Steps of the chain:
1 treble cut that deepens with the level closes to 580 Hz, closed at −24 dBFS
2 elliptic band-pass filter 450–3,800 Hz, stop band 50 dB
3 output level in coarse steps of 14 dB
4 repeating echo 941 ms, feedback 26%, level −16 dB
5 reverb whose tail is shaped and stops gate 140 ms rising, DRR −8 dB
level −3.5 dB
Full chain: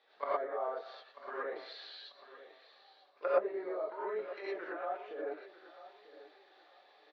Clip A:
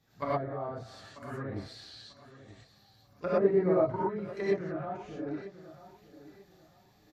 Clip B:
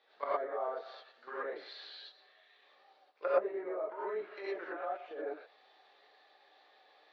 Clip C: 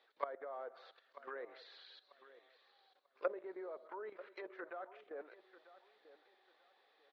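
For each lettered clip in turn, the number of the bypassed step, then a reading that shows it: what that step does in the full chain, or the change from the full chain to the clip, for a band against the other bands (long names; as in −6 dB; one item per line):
2, 250 Hz band +14.0 dB
4, change in momentary loudness spread −6 LU
5, change in crest factor +3.5 dB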